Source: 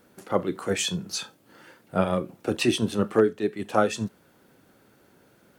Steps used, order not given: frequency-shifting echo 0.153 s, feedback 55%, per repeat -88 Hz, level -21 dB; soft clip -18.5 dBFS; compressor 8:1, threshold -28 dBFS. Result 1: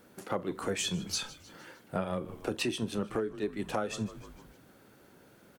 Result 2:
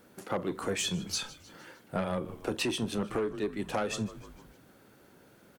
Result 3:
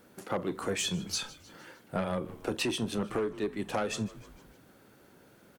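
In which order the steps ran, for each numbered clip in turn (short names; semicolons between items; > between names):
frequency-shifting echo > compressor > soft clip; frequency-shifting echo > soft clip > compressor; soft clip > frequency-shifting echo > compressor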